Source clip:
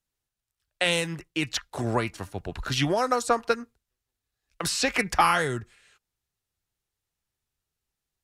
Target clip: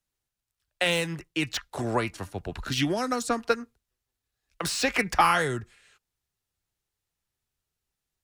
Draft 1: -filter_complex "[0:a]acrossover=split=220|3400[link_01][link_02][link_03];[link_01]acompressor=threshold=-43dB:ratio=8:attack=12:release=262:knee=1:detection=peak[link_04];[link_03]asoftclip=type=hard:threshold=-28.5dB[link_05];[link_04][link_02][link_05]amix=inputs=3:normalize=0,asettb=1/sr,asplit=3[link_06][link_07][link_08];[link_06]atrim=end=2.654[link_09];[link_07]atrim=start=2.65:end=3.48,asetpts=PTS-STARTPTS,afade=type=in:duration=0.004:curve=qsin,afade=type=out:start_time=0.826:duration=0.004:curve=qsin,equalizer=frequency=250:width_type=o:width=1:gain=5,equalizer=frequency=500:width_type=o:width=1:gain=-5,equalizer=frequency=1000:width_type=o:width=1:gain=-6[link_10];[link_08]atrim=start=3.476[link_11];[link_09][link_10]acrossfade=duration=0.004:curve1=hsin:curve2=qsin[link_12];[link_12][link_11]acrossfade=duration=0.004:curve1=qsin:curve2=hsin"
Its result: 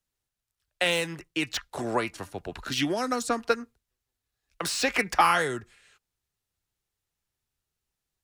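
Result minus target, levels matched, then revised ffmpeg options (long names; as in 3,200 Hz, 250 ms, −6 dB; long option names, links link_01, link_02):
downward compressor: peak gain reduction +9 dB
-filter_complex "[0:a]acrossover=split=220|3400[link_01][link_02][link_03];[link_01]acompressor=threshold=-32.5dB:ratio=8:attack=12:release=262:knee=1:detection=peak[link_04];[link_03]asoftclip=type=hard:threshold=-28.5dB[link_05];[link_04][link_02][link_05]amix=inputs=3:normalize=0,asettb=1/sr,asplit=3[link_06][link_07][link_08];[link_06]atrim=end=2.654[link_09];[link_07]atrim=start=2.65:end=3.48,asetpts=PTS-STARTPTS,afade=type=in:duration=0.004:curve=qsin,afade=type=out:start_time=0.826:duration=0.004:curve=qsin,equalizer=frequency=250:width_type=o:width=1:gain=5,equalizer=frequency=500:width_type=o:width=1:gain=-5,equalizer=frequency=1000:width_type=o:width=1:gain=-6[link_10];[link_08]atrim=start=3.476[link_11];[link_09][link_10]acrossfade=duration=0.004:curve1=hsin:curve2=qsin[link_12];[link_12][link_11]acrossfade=duration=0.004:curve1=qsin:curve2=hsin"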